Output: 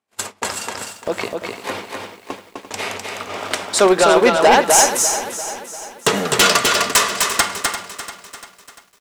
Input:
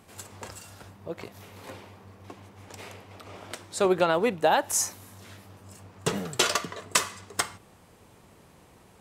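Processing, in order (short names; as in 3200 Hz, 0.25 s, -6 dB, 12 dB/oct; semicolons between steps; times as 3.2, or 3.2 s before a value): weighting filter A; gate -47 dBFS, range -43 dB; low shelf 220 Hz +7 dB; in parallel at +0.5 dB: compressor, threshold -35 dBFS, peak gain reduction 17 dB; on the sum: sine folder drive 10 dB, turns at -5 dBFS; echo 0.254 s -4 dB; on a send at -17 dB: reverb RT60 0.15 s, pre-delay 3 ms; on the sum: lo-fi delay 0.345 s, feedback 55%, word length 7-bit, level -11.5 dB; gain -2 dB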